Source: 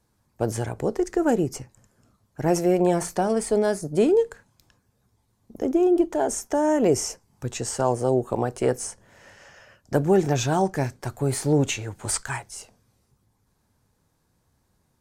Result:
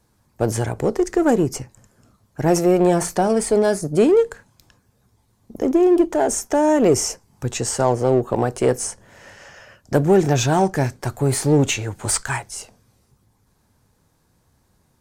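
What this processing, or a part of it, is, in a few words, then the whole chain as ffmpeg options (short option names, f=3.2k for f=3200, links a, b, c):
parallel distortion: -filter_complex "[0:a]asettb=1/sr,asplit=3[a][b][c];[a]atrim=end=7.854[d];[b]atrim=start=7.85:end=8.36,asetpts=PTS-STARTPTS,afade=t=in:d=0.004:c=qsin,afade=t=out:st=0.506:d=0.004:c=qsin,equalizer=f=9.2k:w=1.3:g=-10.5[e];[c]atrim=start=8.356[f];[d][e]acrossfade=d=0.004:c1=hsin:c2=qsin[g];[g][f]acrossfade=d=0.004:c1=qsin:c2=hsin,asplit=2[h][i];[i]asoftclip=type=hard:threshold=-24dB,volume=-7dB[j];[h][j]amix=inputs=2:normalize=0,volume=3dB"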